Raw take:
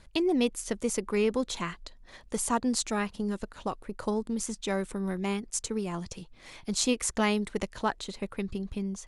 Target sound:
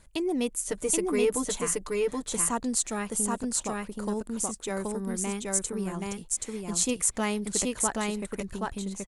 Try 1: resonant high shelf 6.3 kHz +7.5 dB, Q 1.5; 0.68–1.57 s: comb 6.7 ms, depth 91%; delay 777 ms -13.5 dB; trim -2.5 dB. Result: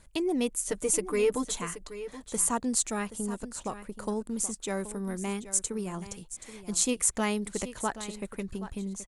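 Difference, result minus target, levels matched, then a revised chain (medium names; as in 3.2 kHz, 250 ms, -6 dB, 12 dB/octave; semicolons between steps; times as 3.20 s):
echo-to-direct -11.5 dB
resonant high shelf 6.3 kHz +7.5 dB, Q 1.5; 0.68–1.57 s: comb 6.7 ms, depth 91%; delay 777 ms -2 dB; trim -2.5 dB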